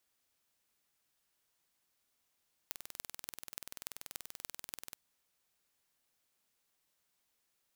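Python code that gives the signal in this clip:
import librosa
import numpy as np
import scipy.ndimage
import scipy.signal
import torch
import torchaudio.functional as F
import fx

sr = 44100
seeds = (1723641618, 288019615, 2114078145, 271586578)

y = fx.impulse_train(sr, length_s=2.27, per_s=20.7, accent_every=6, level_db=-11.5)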